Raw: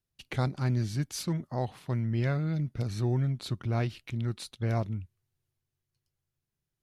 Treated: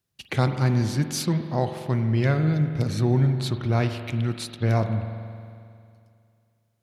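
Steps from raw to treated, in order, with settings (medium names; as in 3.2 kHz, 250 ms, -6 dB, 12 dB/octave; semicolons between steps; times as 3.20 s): high-pass 82 Hz; on a send: reverberation RT60 2.4 s, pre-delay 45 ms, DRR 7 dB; on the sum: trim +7.5 dB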